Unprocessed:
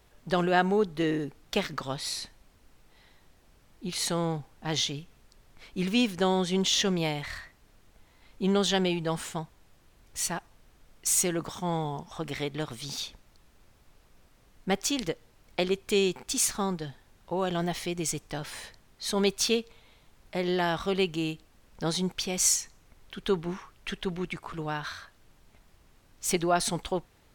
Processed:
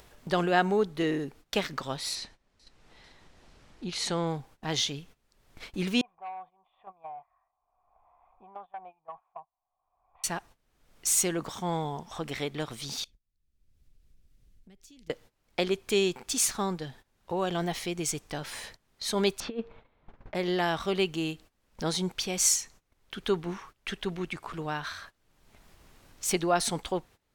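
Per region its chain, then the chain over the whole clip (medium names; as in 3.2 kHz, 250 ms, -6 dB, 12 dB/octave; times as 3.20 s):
2.15–4.27 s: low-pass 6.8 kHz + echo whose repeats swap between lows and highs 222 ms, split 1.6 kHz, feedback 55%, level -14 dB
6.01–10.24 s: cascade formant filter a + peaking EQ 260 Hz -13 dB 2.2 oct + transformer saturation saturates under 820 Hz
13.04–15.10 s: amplifier tone stack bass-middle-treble 10-0-1 + compression 4:1, threshold -54 dBFS
19.40–20.35 s: low-pass 1.5 kHz + hum notches 60/120/180 Hz + compressor with a negative ratio -31 dBFS, ratio -0.5
whole clip: gate -49 dBFS, range -20 dB; bass shelf 180 Hz -3.5 dB; upward compressor, threshold -35 dBFS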